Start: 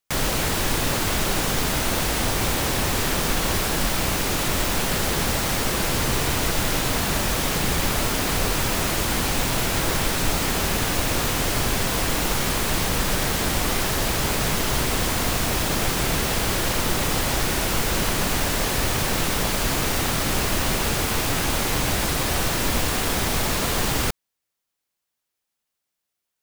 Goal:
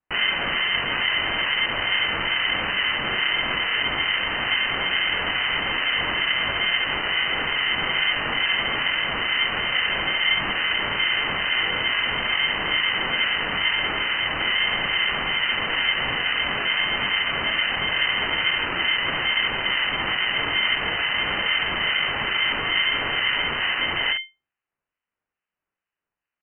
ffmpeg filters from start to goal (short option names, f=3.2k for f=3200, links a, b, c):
-filter_complex "[0:a]lowpass=f=2.2k:t=q:w=0.5098,lowpass=f=2.2k:t=q:w=0.6013,lowpass=f=2.2k:t=q:w=0.9,lowpass=f=2.2k:t=q:w=2.563,afreqshift=-2600,acrossover=split=1500[a][b];[a]aeval=exprs='val(0)*(1-0.7/2+0.7/2*cos(2*PI*2.3*n/s))':c=same[c];[b]aeval=exprs='val(0)*(1-0.7/2-0.7/2*cos(2*PI*2.3*n/s))':c=same[d];[c][d]amix=inputs=2:normalize=0,asplit=2[e][f];[f]alimiter=limit=-23dB:level=0:latency=1:release=57,volume=1dB[g];[e][g]amix=inputs=2:normalize=0,aecho=1:1:22|67:0.631|0.422,aeval=exprs='val(0)*sin(2*PI*490*n/s)':c=same"